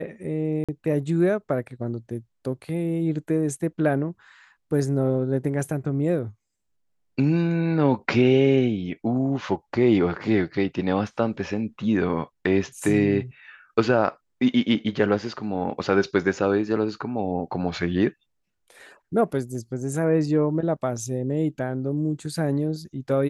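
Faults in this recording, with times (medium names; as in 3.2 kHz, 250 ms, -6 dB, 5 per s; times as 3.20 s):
0.64–0.69 s: dropout 46 ms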